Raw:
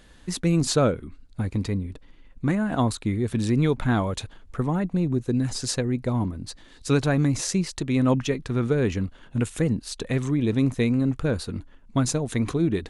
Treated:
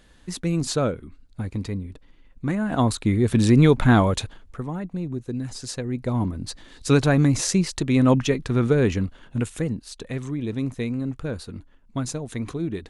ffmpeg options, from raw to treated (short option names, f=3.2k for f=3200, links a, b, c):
-af "volume=15.5dB,afade=t=in:st=2.45:d=0.95:silence=0.354813,afade=t=out:st=4.07:d=0.53:silence=0.251189,afade=t=in:st=5.75:d=0.69:silence=0.354813,afade=t=out:st=8.79:d=1.05:silence=0.375837"